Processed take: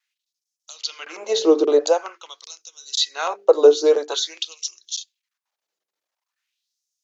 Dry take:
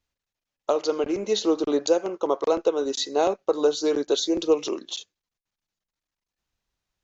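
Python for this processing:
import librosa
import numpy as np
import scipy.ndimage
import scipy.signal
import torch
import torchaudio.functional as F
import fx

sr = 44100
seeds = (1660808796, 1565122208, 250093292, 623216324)

y = fx.vibrato(x, sr, rate_hz=1.8, depth_cents=31.0)
y = fx.hum_notches(y, sr, base_hz=50, count=9)
y = fx.filter_lfo_highpass(y, sr, shape='sine', hz=0.47, low_hz=390.0, high_hz=6100.0, q=2.4)
y = y * librosa.db_to_amplitude(3.0)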